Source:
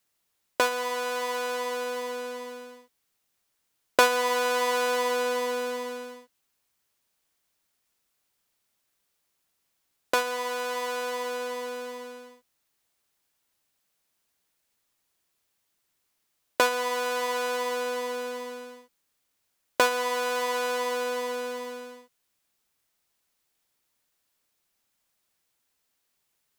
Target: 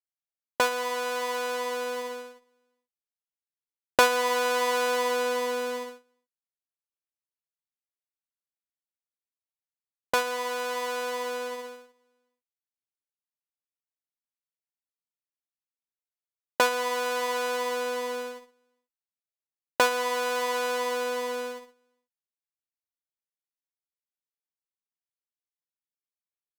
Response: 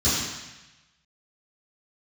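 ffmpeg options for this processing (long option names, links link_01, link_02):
-af "agate=range=-30dB:threshold=-32dB:ratio=16:detection=peak"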